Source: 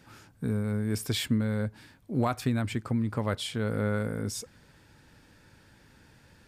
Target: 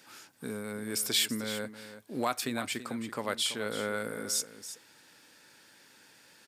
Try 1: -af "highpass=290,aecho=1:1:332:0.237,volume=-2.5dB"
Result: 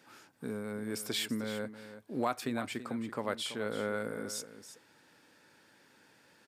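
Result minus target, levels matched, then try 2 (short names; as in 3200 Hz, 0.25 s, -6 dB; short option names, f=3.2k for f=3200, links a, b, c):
4000 Hz band -3.5 dB
-af "highpass=290,highshelf=f=2.3k:g=10.5,aecho=1:1:332:0.237,volume=-2.5dB"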